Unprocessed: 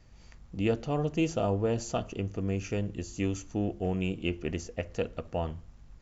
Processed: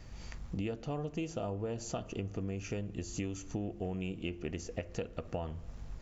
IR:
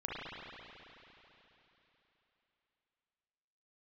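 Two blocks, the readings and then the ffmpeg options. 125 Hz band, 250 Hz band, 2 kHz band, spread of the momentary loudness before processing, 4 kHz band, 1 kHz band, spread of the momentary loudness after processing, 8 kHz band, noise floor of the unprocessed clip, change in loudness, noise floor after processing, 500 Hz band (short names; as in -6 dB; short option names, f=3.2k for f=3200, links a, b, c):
-6.5 dB, -7.0 dB, -7.0 dB, 7 LU, -6.0 dB, -7.5 dB, 4 LU, n/a, -54 dBFS, -7.5 dB, -49 dBFS, -7.5 dB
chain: -filter_complex "[0:a]acompressor=threshold=-42dB:ratio=8,asplit=2[a][b];[1:a]atrim=start_sample=2205,asetrate=30870,aresample=44100[c];[b][c]afir=irnorm=-1:irlink=0,volume=-27dB[d];[a][d]amix=inputs=2:normalize=0,volume=7dB"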